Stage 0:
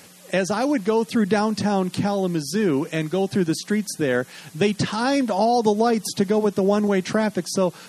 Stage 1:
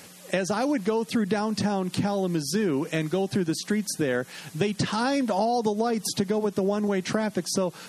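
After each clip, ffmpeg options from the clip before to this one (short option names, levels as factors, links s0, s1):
-af "acompressor=threshold=0.0891:ratio=6"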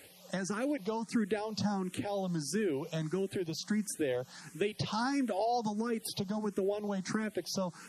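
-filter_complex "[0:a]asplit=2[s0][s1];[s1]afreqshift=1.5[s2];[s0][s2]amix=inputs=2:normalize=1,volume=0.531"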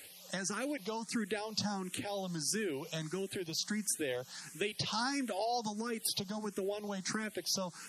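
-af "tiltshelf=f=1500:g=-5.5"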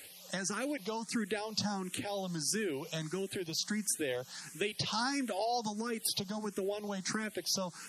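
-af "acontrast=29,volume=0.631"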